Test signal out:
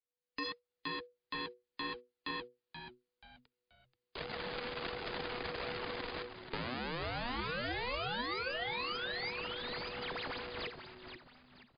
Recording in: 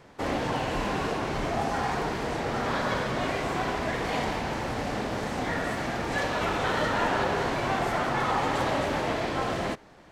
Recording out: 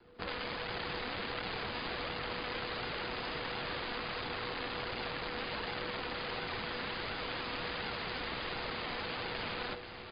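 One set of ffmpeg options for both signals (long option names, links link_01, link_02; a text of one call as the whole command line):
ffmpeg -i in.wav -filter_complex "[0:a]aeval=exprs='max(val(0),0)':channel_layout=same,dynaudnorm=framelen=130:gausssize=5:maxgain=10dB,aeval=exprs='(mod(8.41*val(0)+1,2)-1)/8.41':channel_layout=same,flanger=delay=1.5:depth=2.6:regen=56:speed=1.4:shape=sinusoidal,acrossover=split=470|940|2800[link_01][link_02][link_03][link_04];[link_01]acompressor=threshold=-47dB:ratio=4[link_05];[link_02]acompressor=threshold=-51dB:ratio=4[link_06];[link_03]acompressor=threshold=-40dB:ratio=4[link_07];[link_04]acompressor=threshold=-40dB:ratio=4[link_08];[link_05][link_06][link_07][link_08]amix=inputs=4:normalize=0,afreqshift=-490,asplit=5[link_09][link_10][link_11][link_12][link_13];[link_10]adelay=481,afreqshift=-120,volume=-9dB[link_14];[link_11]adelay=962,afreqshift=-240,volume=-18.4dB[link_15];[link_12]adelay=1443,afreqshift=-360,volume=-27.7dB[link_16];[link_13]adelay=1924,afreqshift=-480,volume=-37.1dB[link_17];[link_09][link_14][link_15][link_16][link_17]amix=inputs=5:normalize=0" -ar 11025 -c:a libmp3lame -b:a 56k out.mp3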